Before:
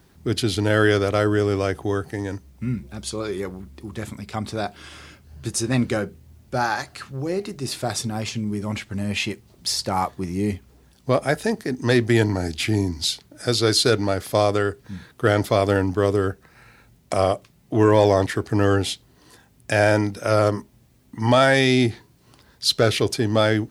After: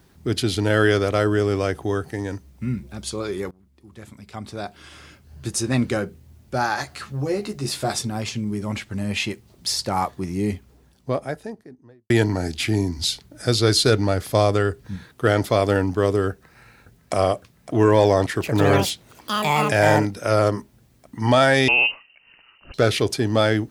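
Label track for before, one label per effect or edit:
3.510000	5.500000	fade in, from −23 dB
6.760000	7.990000	double-tracking delay 14 ms −3 dB
10.440000	12.100000	fade out and dull
12.980000	14.960000	low-shelf EQ 110 Hz +9 dB
16.300000	17.140000	delay throw 560 ms, feedback 80%, level −13.5 dB
18.250000	20.580000	delay with pitch and tempo change per echo 155 ms, each echo +6 semitones, echoes 2
21.680000	22.740000	voice inversion scrambler carrier 2,900 Hz

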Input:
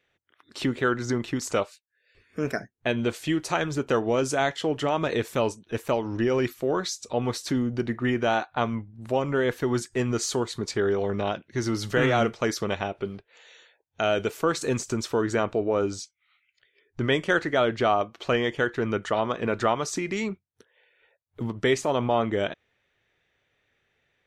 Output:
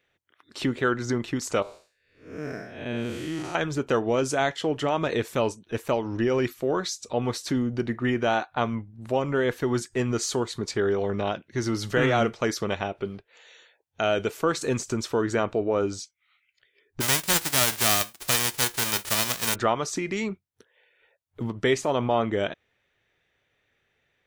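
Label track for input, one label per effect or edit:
1.620000	3.550000	spectrum smeared in time width 224 ms
17.000000	19.540000	spectral envelope flattened exponent 0.1

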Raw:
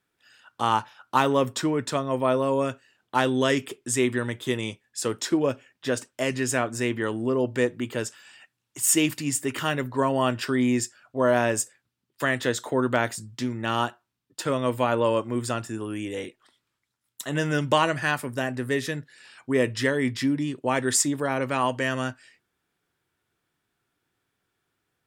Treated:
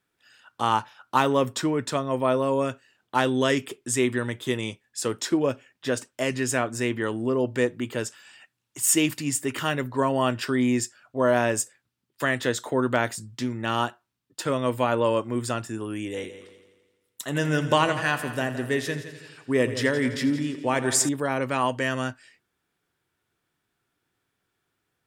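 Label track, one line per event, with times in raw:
16.110000	21.090000	echo machine with several playback heads 84 ms, heads first and second, feedback 50%, level −14.5 dB

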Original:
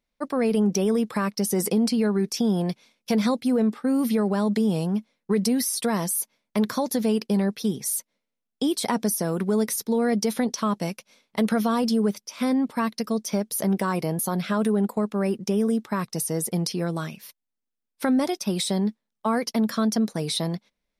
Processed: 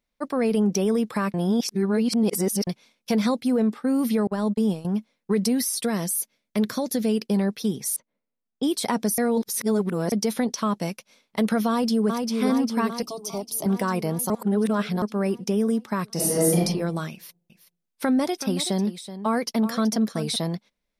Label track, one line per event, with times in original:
1.340000	2.670000	reverse
4.270000	4.850000	noise gate −24 dBFS, range −35 dB
5.820000	7.270000	parametric band 960 Hz −7 dB
7.960000	8.630000	head-to-tape spacing loss at 10 kHz 37 dB
9.180000	10.120000	reverse
11.690000	12.300000	delay throw 400 ms, feedback 70%, level −4 dB
13.020000	13.660000	phaser with its sweep stopped centre 330 Hz, stages 8
14.300000	15.020000	reverse
16.130000	16.600000	thrown reverb, RT60 0.81 s, DRR −6.5 dB
17.120000	20.360000	single-tap delay 377 ms −12.5 dB

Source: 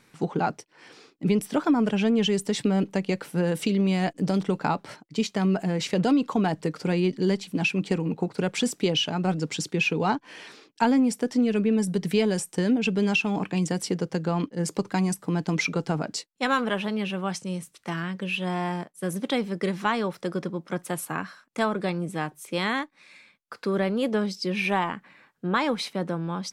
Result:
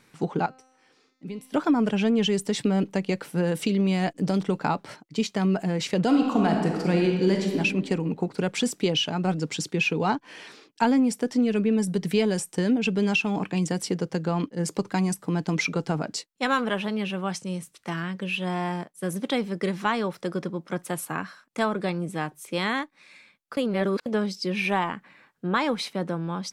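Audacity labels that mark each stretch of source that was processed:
0.460000	1.540000	tuned comb filter 260 Hz, decay 1.1 s, mix 80%
6.060000	7.560000	thrown reverb, RT60 1.5 s, DRR 1 dB
23.570000	24.060000	reverse

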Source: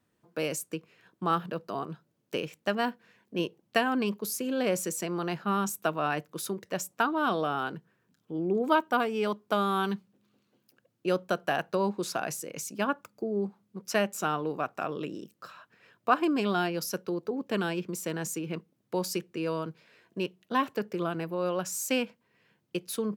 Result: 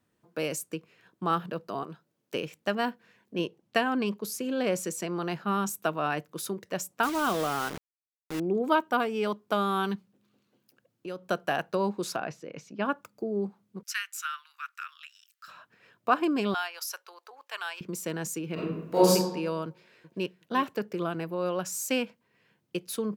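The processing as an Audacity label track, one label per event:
1.830000	2.350000	low-shelf EQ 150 Hz −10.5 dB
3.350000	5.220000	high-shelf EQ 12,000 Hz −8 dB
7.030000	8.400000	bit-depth reduction 6 bits, dither none
9.950000	11.290000	downward compressor 2 to 1, threshold −41 dBFS
12.160000	12.850000	high-frequency loss of the air 230 metres
13.830000	15.480000	Butterworth high-pass 1,300 Hz 48 dB per octave
16.540000	17.810000	high-pass filter 850 Hz 24 dB per octave
18.540000	19.110000	thrown reverb, RT60 1 s, DRR −11.5 dB
19.670000	20.380000	delay throw 370 ms, feedback 15%, level −13 dB

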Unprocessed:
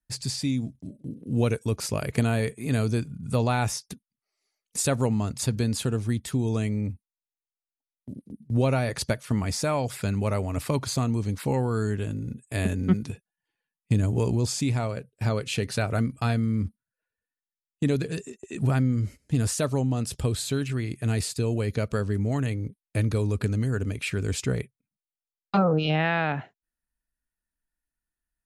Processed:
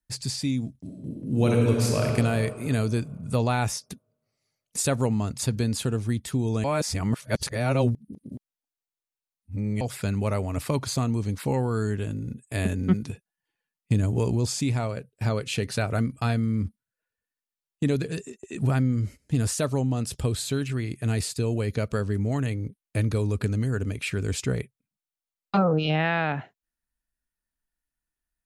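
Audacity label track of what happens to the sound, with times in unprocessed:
0.790000	2.040000	thrown reverb, RT60 2.4 s, DRR −1.5 dB
6.640000	9.810000	reverse

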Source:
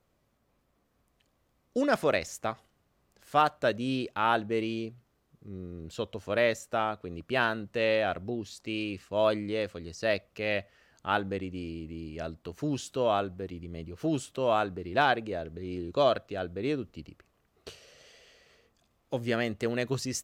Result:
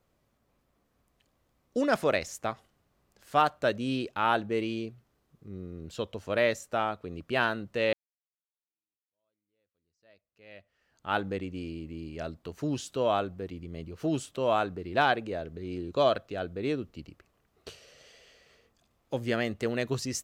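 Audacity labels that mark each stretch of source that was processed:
7.930000	11.180000	fade in exponential

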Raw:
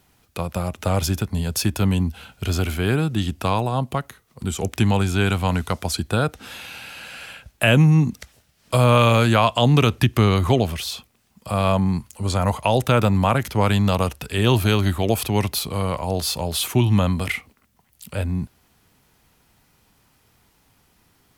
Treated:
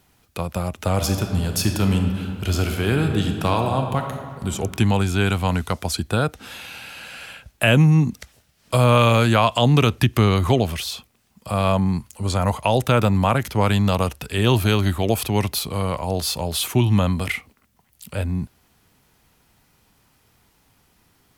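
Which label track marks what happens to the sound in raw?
0.920000	4.480000	thrown reverb, RT60 2 s, DRR 4 dB
9.510000	10.830000	one half of a high-frequency compander encoder only

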